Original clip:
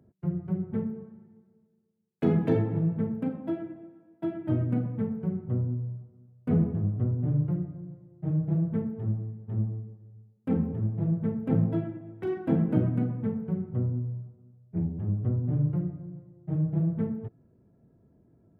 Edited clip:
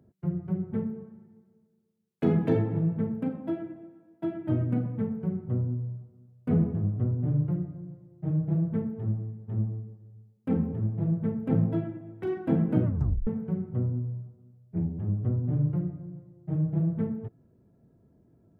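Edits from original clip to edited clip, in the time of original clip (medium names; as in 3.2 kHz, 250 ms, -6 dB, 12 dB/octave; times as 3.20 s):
12.84 s: tape stop 0.43 s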